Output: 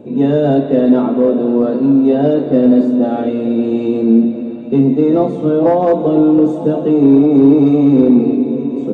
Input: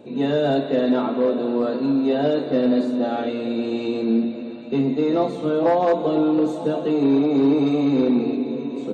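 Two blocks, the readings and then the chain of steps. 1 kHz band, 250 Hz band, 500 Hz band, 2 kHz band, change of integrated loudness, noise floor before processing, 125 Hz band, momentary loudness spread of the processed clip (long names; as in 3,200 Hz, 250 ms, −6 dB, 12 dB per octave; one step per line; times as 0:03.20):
+4.0 dB, +9.5 dB, +7.0 dB, can't be measured, +8.5 dB, −31 dBFS, +11.0 dB, 7 LU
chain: tilt shelving filter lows +7 dB, about 720 Hz
notch filter 4,100 Hz, Q 7
level +4.5 dB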